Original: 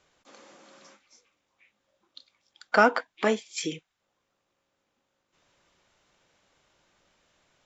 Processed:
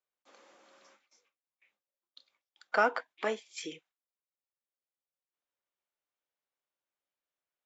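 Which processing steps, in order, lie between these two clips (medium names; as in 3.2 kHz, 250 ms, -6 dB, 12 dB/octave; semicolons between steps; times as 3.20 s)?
gate with hold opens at -54 dBFS; tone controls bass -13 dB, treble -4 dB; trim -6.5 dB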